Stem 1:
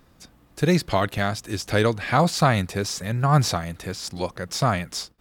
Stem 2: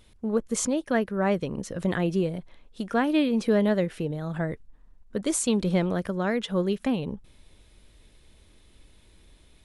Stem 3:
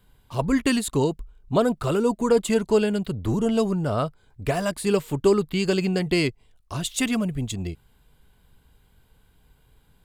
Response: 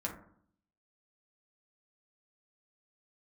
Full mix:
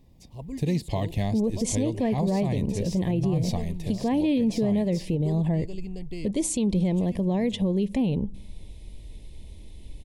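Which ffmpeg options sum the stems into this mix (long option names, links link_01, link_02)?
-filter_complex "[0:a]volume=-8dB[link_01];[1:a]adelay=1100,volume=3dB,asplit=2[link_02][link_03];[link_03]volume=-24dB[link_04];[2:a]volume=-20dB[link_05];[3:a]atrim=start_sample=2205[link_06];[link_04][link_06]afir=irnorm=-1:irlink=0[link_07];[link_01][link_02][link_05][link_07]amix=inputs=4:normalize=0,asuperstop=centerf=1400:order=4:qfactor=1.4,lowshelf=frequency=260:gain=11.5,alimiter=limit=-16.5dB:level=0:latency=1:release=175"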